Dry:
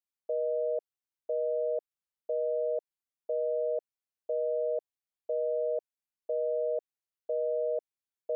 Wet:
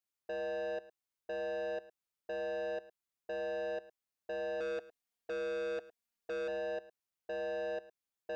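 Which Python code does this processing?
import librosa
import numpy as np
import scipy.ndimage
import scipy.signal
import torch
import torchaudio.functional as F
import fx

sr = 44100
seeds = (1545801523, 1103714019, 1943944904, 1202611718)

y = fx.comb(x, sr, ms=4.3, depth=0.87, at=(4.6, 6.48))
y = 10.0 ** (-37.0 / 20.0) * np.tanh(y / 10.0 ** (-37.0 / 20.0))
y = y + 10.0 ** (-18.0 / 20.0) * np.pad(y, (int(108 * sr / 1000.0), 0))[:len(y)]
y = y * librosa.db_to_amplitude(1.0)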